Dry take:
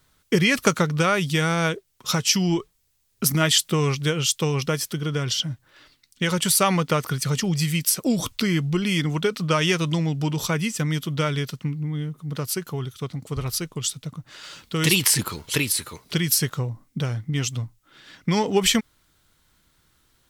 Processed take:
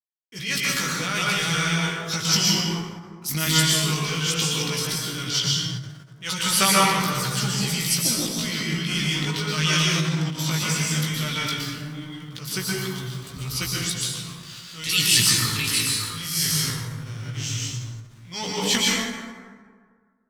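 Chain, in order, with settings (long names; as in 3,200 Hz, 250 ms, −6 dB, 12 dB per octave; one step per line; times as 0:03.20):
0:15.92–0:18.32: spectrum smeared in time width 113 ms
automatic gain control gain up to 6 dB
dead-zone distortion −41 dBFS
guitar amp tone stack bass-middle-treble 5-5-5
transient designer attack −12 dB, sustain +9 dB
dynamic equaliser 4,400 Hz, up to +6 dB, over −53 dBFS, Q 0.92
dense smooth reverb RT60 1.8 s, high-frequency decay 0.45×, pre-delay 105 ms, DRR −4.5 dB
chorus effect 0.15 Hz, delay 15.5 ms, depth 3.5 ms
every ending faded ahead of time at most 120 dB per second
level +4.5 dB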